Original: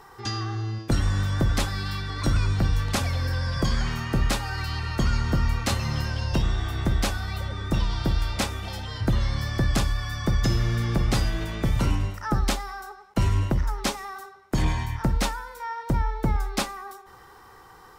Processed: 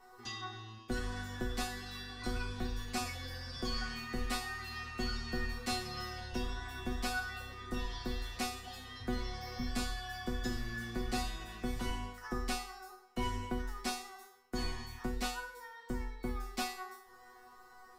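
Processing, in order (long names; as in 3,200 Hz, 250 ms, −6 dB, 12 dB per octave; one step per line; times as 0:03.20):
healed spectral selection 0:09.35–0:09.64, 270–11,000 Hz before
resonators tuned to a chord B3 fifth, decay 0.51 s
level +10.5 dB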